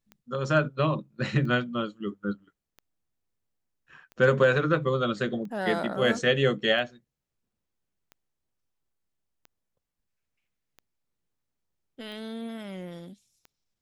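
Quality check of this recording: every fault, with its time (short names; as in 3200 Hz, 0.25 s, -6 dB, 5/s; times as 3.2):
tick 45 rpm -31 dBFS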